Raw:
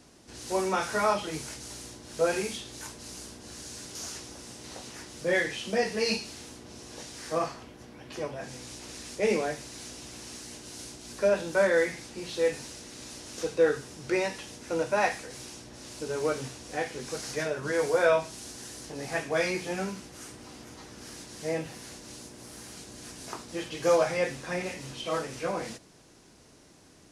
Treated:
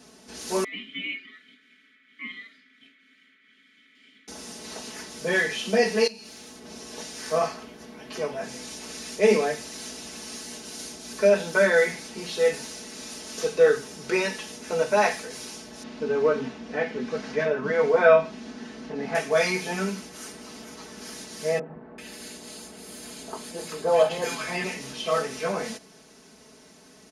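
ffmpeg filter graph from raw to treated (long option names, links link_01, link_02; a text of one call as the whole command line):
ffmpeg -i in.wav -filter_complex "[0:a]asettb=1/sr,asplit=3[link_01][link_02][link_03];[link_01]atrim=end=0.644[link_04];[link_02]atrim=start=0.64:end=4.28,asetpts=PTS-STARTPTS,afade=type=in:duration=0.004:curve=qsin,afade=type=out:start_time=3.636:duration=0.004:curve=qsin,highshelf=frequency=2900:width_type=q:width=1.5:gain=-8.5,aeval=exprs='val(0)*sin(2*PI*1600*n/s)':channel_layout=same,asplit=3[link_05][link_06][link_07];[link_05]bandpass=frequency=270:width_type=q:width=8,volume=0dB[link_08];[link_06]bandpass=frequency=2290:width_type=q:width=8,volume=-6dB[link_09];[link_07]bandpass=frequency=3010:width_type=q:width=8,volume=-9dB[link_10];[link_08][link_09][link_10]amix=inputs=3:normalize=0[link_11];[link_03]atrim=start=4.276[link_12];[link_04][link_11]acrossfade=duration=0.004:curve1=hsin:curve2=qsin[link_13];[link_13][link_12]acrossfade=duration=0.004:curve1=qsin:curve2=hsin,asettb=1/sr,asplit=3[link_14][link_15][link_16];[link_14]atrim=end=6.074[link_17];[link_15]atrim=start=6.07:end=6.64,asetpts=PTS-STARTPTS,afade=type=in:duration=0.004:curve=qsin,afade=type=out:start_time=0.566:duration=0.004:curve=qsin,acompressor=threshold=-42dB:ratio=12:attack=3.2:release=140:knee=1:detection=peak,aeval=exprs='(tanh(39.8*val(0)+0.5)-tanh(0.5))/39.8':channel_layout=same[link_18];[link_16]atrim=start=6.636[link_19];[link_17][link_18]acrossfade=duration=0.004:curve1=hsin:curve2=qsin[link_20];[link_20][link_19]acrossfade=duration=0.004:curve1=qsin:curve2=hsin,asettb=1/sr,asplit=3[link_21][link_22][link_23];[link_21]atrim=end=15.834[link_24];[link_22]atrim=start=15.83:end=19.15,asetpts=PTS-STARTPTS,afade=type=in:duration=0.004:curve=qsin,afade=type=out:start_time=3.316:duration=0.004:curve=qsin,lowpass=2700,equalizer=frequency=230:width=3:gain=9[link_25];[link_23]atrim=start=19.146[link_26];[link_24][link_25]acrossfade=duration=0.004:curve1=hsin:curve2=qsin[link_27];[link_27][link_26]acrossfade=duration=0.004:curve1=qsin:curve2=hsin,asettb=1/sr,asplit=3[link_28][link_29][link_30];[link_28]atrim=end=21.594[link_31];[link_29]atrim=start=21.59:end=24.64,asetpts=PTS-STARTPTS,afade=type=in:duration=0.004:curve=qsin,afade=type=out:start_time=3.046:duration=0.004:curve=qsin,bandreject=frequency=5700:width=6.2,acrossover=split=160|1300[link_32][link_33][link_34];[link_32]adelay=100[link_35];[link_34]adelay=390[link_36];[link_35][link_33][link_36]amix=inputs=3:normalize=0,atrim=end_sample=134505[link_37];[link_30]atrim=start=24.636[link_38];[link_31][link_37]acrossfade=duration=0.004:curve1=hsin:curve2=qsin[link_39];[link_39][link_38]acrossfade=duration=0.004:curve1=qsin:curve2=hsin,highpass=frequency=150:poles=1,bandreject=frequency=7900:width=9.9,aecho=1:1:4.6:0.88,volume=3dB" out.wav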